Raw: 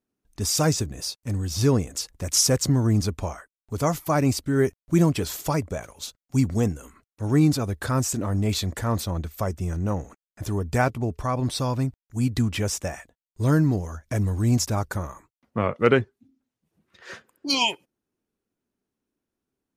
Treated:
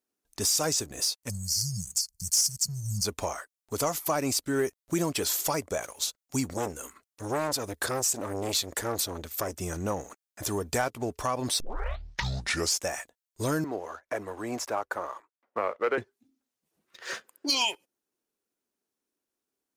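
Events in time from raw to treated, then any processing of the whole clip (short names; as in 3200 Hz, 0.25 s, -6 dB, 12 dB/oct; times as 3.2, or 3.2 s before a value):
1.3–3.05 spectral delete 200–4200 Hz
6.53–9.54 core saturation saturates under 870 Hz
11.6 tape start 1.26 s
13.64–15.98 three-band isolator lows -18 dB, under 330 Hz, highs -19 dB, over 2300 Hz
whole clip: tone controls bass -14 dB, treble +6 dB; compressor 2.5:1, threshold -30 dBFS; sample leveller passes 1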